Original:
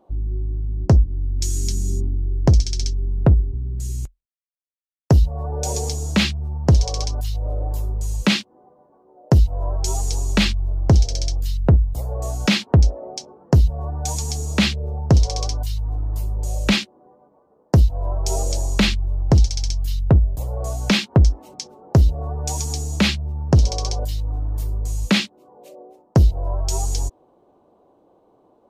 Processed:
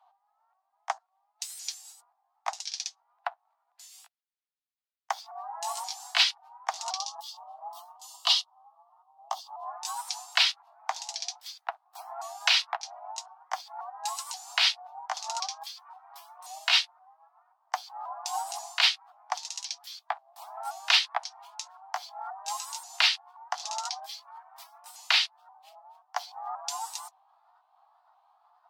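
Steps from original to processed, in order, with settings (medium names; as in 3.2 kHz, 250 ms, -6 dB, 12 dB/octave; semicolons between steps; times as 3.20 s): sawtooth pitch modulation +4 st, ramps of 531 ms; steep high-pass 710 Hz 96 dB/octave; resonant high shelf 5.8 kHz -8 dB, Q 1.5; time-frequency box 6.97–9.66 s, 1.3–2.7 kHz -14 dB; MP3 80 kbps 44.1 kHz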